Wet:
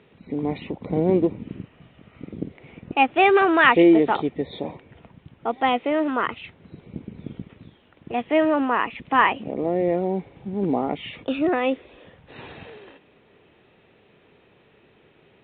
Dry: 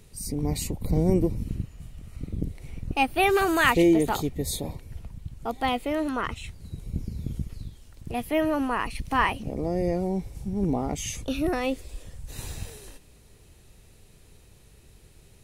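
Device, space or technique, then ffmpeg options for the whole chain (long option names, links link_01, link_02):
telephone: -af "highpass=250,lowpass=3000,volume=6dB" -ar 8000 -c:a pcm_mulaw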